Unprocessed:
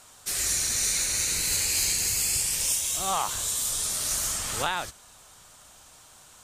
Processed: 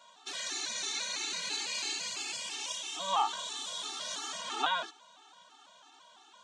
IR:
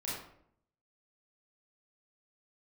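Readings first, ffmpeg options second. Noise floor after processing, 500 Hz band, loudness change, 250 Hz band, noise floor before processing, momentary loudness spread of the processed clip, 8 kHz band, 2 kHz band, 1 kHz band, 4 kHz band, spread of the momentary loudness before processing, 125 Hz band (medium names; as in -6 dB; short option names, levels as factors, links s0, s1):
-59 dBFS, -5.5 dB, -9.5 dB, -7.0 dB, -53 dBFS, 6 LU, -14.5 dB, -4.5 dB, -1.0 dB, -4.0 dB, 5 LU, under -20 dB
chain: -af "highpass=f=250:w=0.5412,highpass=f=250:w=1.3066,equalizer=f=490:t=q:w=4:g=-5,equalizer=f=940:t=q:w=4:g=7,equalizer=f=2100:t=q:w=4:g=-5,equalizer=f=3400:t=q:w=4:g=6,equalizer=f=5000:t=q:w=4:g=-7,lowpass=f=5500:w=0.5412,lowpass=f=5500:w=1.3066,afftfilt=real='re*gt(sin(2*PI*3*pts/sr)*(1-2*mod(floor(b*sr/1024/230),2)),0)':imag='im*gt(sin(2*PI*3*pts/sr)*(1-2*mod(floor(b*sr/1024/230),2)),0)':win_size=1024:overlap=0.75"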